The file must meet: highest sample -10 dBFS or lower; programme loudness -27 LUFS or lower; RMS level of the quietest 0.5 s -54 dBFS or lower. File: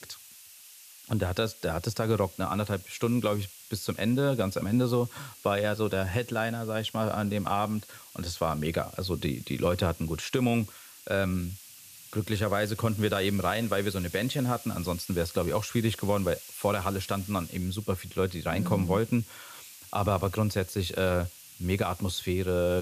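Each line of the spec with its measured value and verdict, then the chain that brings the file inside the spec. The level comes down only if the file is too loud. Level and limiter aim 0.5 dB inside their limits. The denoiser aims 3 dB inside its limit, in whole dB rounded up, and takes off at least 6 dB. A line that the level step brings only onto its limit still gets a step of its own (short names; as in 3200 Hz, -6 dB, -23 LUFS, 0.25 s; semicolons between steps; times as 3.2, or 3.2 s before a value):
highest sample -12.5 dBFS: OK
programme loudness -29.5 LUFS: OK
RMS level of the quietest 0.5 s -51 dBFS: fail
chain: denoiser 6 dB, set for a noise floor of -51 dBFS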